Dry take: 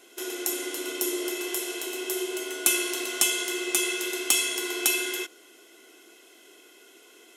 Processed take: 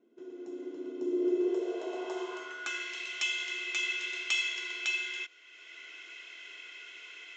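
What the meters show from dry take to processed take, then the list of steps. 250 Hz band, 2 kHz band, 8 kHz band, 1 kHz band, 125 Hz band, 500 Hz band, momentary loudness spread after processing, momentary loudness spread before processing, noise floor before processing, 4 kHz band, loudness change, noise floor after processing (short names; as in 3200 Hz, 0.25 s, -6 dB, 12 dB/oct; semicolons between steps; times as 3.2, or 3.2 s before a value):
-2.0 dB, -2.5 dB, -19.0 dB, -6.5 dB, n/a, -2.5 dB, 16 LU, 9 LU, -54 dBFS, -6.5 dB, -6.5 dB, -55 dBFS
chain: dynamic EQ 1900 Hz, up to -4 dB, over -39 dBFS, Q 0.79; AGC gain up to 13 dB; band-pass sweep 210 Hz -> 2300 Hz, 0.95–3.01; downsampling 16000 Hz; notch 780 Hz, Q 12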